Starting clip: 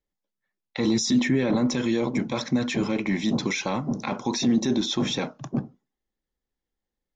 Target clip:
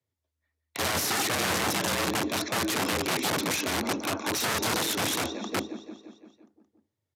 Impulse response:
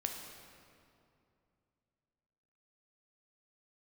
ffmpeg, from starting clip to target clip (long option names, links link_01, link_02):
-af "aecho=1:1:172|344|516|688|860|1032|1204:0.251|0.148|0.0874|0.0516|0.0304|0.018|0.0106,aeval=exprs='(mod(12.6*val(0)+1,2)-1)/12.6':channel_layout=same,afreqshift=78,aresample=32000,aresample=44100"